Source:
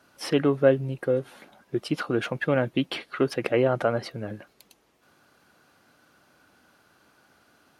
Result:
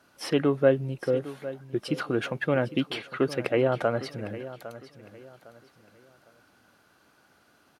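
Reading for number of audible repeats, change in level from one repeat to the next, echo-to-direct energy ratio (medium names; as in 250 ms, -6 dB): 2, -10.0 dB, -14.5 dB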